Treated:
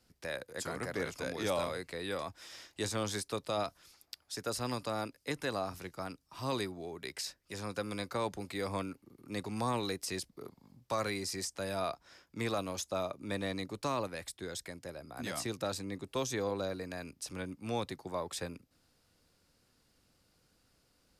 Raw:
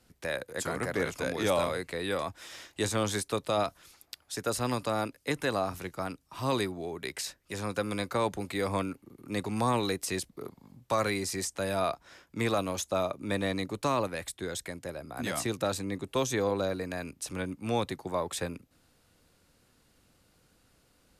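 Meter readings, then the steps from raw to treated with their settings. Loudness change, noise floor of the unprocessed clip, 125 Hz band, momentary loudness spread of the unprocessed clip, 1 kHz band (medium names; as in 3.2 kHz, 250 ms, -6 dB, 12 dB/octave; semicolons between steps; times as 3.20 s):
-5.5 dB, -68 dBFS, -6.0 dB, 9 LU, -6.0 dB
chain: peaking EQ 5 kHz +6 dB 0.44 oct; trim -6 dB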